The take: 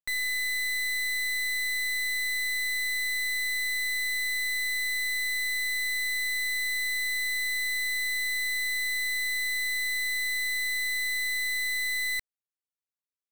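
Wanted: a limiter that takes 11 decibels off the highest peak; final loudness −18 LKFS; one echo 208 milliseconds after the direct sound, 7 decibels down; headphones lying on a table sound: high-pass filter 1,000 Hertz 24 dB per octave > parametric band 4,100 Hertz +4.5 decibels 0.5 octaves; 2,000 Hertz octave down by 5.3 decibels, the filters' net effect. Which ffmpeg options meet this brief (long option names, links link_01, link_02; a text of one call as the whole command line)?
ffmpeg -i in.wav -af "equalizer=frequency=2000:width_type=o:gain=-5.5,alimiter=level_in=14dB:limit=-24dB:level=0:latency=1,volume=-14dB,highpass=frequency=1000:width=0.5412,highpass=frequency=1000:width=1.3066,equalizer=frequency=4100:width_type=o:width=0.5:gain=4.5,aecho=1:1:208:0.447,volume=19dB" out.wav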